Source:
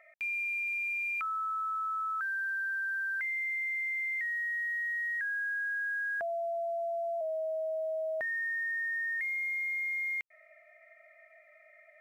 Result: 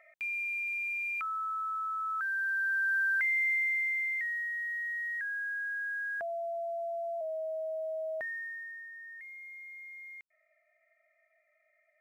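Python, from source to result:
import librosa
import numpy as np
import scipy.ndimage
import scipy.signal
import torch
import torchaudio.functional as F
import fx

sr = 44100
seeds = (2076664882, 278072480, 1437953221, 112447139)

y = fx.gain(x, sr, db=fx.line((1.98, -1.0), (2.96, 5.0), (3.5, 5.0), (4.52, -2.0), (8.17, -2.0), (8.91, -13.5)))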